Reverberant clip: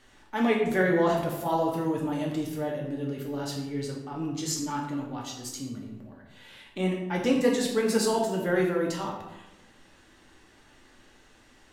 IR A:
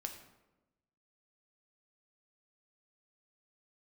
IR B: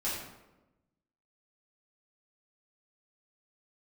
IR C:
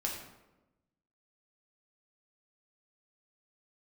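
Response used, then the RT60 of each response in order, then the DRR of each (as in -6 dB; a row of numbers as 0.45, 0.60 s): C; 1.0, 1.0, 1.0 s; 4.0, -10.0, -1.5 dB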